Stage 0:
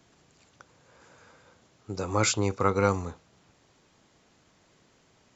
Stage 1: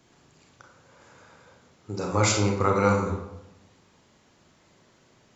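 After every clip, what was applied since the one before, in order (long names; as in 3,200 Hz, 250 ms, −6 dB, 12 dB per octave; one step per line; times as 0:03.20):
convolution reverb RT60 0.85 s, pre-delay 28 ms, DRR 0 dB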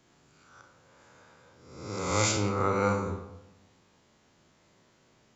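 peak hold with a rise ahead of every peak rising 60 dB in 0.88 s
level −6.5 dB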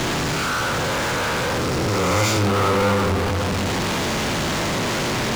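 converter with a step at zero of −26 dBFS
high-frequency loss of the air 100 metres
power curve on the samples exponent 0.5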